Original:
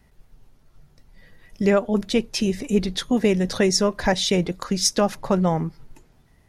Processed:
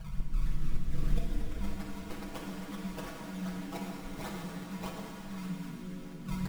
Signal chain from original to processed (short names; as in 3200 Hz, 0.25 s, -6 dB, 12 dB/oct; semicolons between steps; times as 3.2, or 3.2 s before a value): Wiener smoothing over 9 samples; hard clip -18.5 dBFS, distortion -9 dB; compressor 6:1, threshold -30 dBFS, peak gain reduction 9.5 dB; tilt shelf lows -3 dB; on a send: delay with a stepping band-pass 0.458 s, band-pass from 160 Hz, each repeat 1.4 oct, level -7 dB; on the sum: FFT band-reject 210–2400 Hz; high shelf 4500 Hz -6 dB; decimation with a swept rate 26×, swing 100% 3.2 Hz; echoes that change speed 0.234 s, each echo +7 st, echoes 3, each echo -6 dB; flipped gate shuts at -41 dBFS, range -29 dB; comb 6.2 ms, depth 87%; shimmer reverb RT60 2.9 s, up +7 st, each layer -8 dB, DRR -1.5 dB; gain +18 dB